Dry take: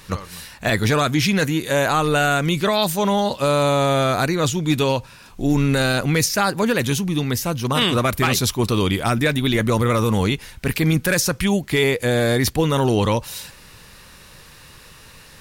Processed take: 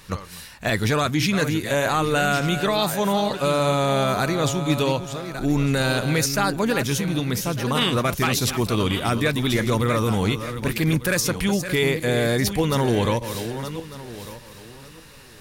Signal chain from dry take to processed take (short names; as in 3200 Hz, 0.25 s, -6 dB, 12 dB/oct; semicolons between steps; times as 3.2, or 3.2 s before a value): regenerating reverse delay 0.6 s, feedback 42%, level -9.5 dB; gain -3 dB